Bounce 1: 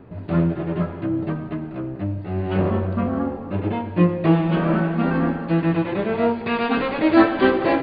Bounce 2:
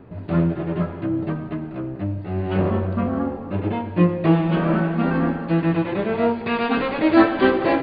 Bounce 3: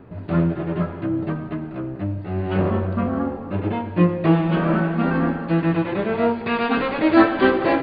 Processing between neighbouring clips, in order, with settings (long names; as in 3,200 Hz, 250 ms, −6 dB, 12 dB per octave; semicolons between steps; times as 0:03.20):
no processing that can be heard
parametric band 1,400 Hz +2 dB